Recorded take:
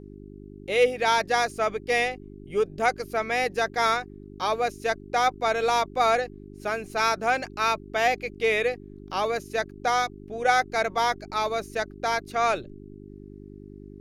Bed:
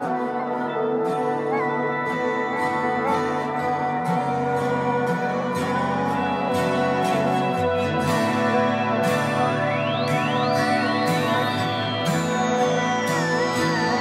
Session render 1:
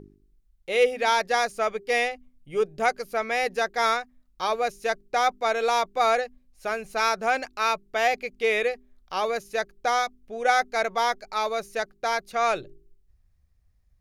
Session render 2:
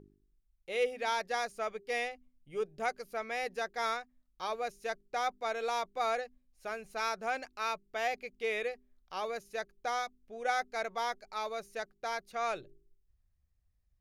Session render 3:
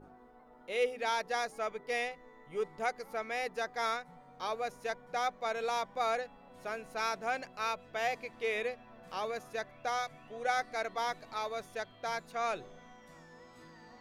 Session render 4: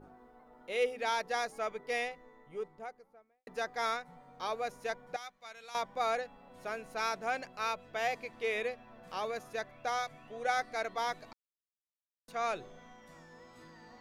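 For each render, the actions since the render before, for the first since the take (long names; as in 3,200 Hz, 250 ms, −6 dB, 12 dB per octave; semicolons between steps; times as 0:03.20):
hum removal 50 Hz, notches 8
level −10.5 dB
mix in bed −33.5 dB
0:01.93–0:03.47: fade out and dull; 0:05.16–0:05.75: guitar amp tone stack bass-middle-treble 5-5-5; 0:11.33–0:12.28: silence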